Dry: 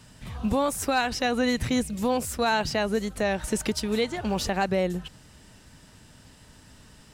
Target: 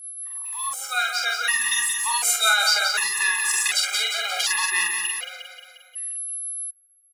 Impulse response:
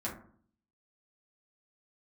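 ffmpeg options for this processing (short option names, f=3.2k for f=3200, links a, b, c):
-filter_complex "[0:a]anlmdn=0.631,highpass=f=1.2k:w=0.5412,highpass=f=1.2k:w=1.3066,highshelf=f=9.2k:g=-2.5,dynaudnorm=f=390:g=9:m=15dB,asetrate=41625,aresample=44100,atempo=1.05946,aeval=exprs='val(0)+0.0178*sin(2*PI*11000*n/s)':c=same,aeval=exprs='sgn(val(0))*max(abs(val(0))-0.00708,0)':c=same,alimiter=limit=-12.5dB:level=0:latency=1:release=71,acrossover=split=2100[a][b];[a]aeval=exprs='val(0)*(1-0.5/2+0.5/2*cos(2*PI*7.2*n/s))':c=same[c];[b]aeval=exprs='val(0)*(1-0.5/2-0.5/2*cos(2*PI*7.2*n/s))':c=same[d];[c][d]amix=inputs=2:normalize=0,asplit=2[e][f];[f]adelay=45,volume=-3.5dB[g];[e][g]amix=inputs=2:normalize=0,asplit=2[h][i];[i]aecho=0:1:177|354|531|708|885|1062|1239:0.501|0.286|0.163|0.0928|0.0529|0.0302|0.0172[j];[h][j]amix=inputs=2:normalize=0,afftfilt=real='re*gt(sin(2*PI*0.67*pts/sr)*(1-2*mod(floor(b*sr/1024/410),2)),0)':imag='im*gt(sin(2*PI*0.67*pts/sr)*(1-2*mod(floor(b*sr/1024/410),2)),0)':win_size=1024:overlap=0.75,volume=6dB"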